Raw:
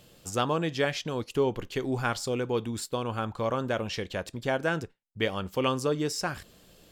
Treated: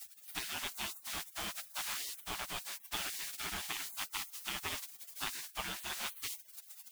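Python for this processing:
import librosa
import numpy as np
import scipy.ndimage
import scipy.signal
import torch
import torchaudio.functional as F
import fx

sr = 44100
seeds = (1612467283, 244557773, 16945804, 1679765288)

y = scipy.signal.sosfilt(scipy.signal.butter(2, 5500.0, 'lowpass', fs=sr, output='sos'), x)
y = fx.peak_eq(y, sr, hz=510.0, db=14.0, octaves=0.28)
y = fx.dmg_noise_colour(y, sr, seeds[0], colour='pink', level_db=-40.0)
y = fx.rider(y, sr, range_db=4, speed_s=0.5)
y = fx.spec_gate(y, sr, threshold_db=-30, keep='weak')
y = y * 10.0 ** (2.5 / 20.0)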